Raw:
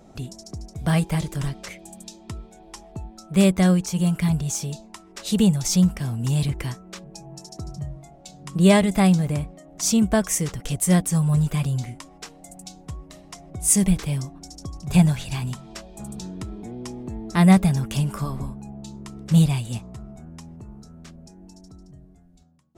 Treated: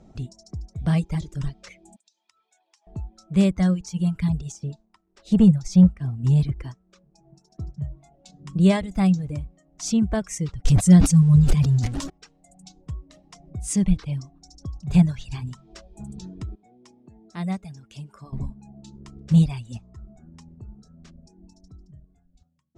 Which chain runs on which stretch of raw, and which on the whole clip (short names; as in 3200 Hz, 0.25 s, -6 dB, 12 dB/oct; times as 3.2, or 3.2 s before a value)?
1.96–2.87 HPF 1400 Hz + compressor 12:1, threshold -48 dBFS
4.52–7.84 tilt shelf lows +3.5 dB, about 1300 Hz + sample leveller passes 1 + upward expander, over -33 dBFS
10.65–12.1 zero-crossing step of -26 dBFS + tone controls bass +7 dB, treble +5 dB + sustainer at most 38 dB/s
16.55–18.33 HPF 280 Hz 6 dB/oct + resonator 740 Hz, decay 0.21 s, harmonics odd
whole clip: Chebyshev low-pass 6300 Hz, order 2; reverb removal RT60 1.4 s; low shelf 250 Hz +11 dB; gain -6 dB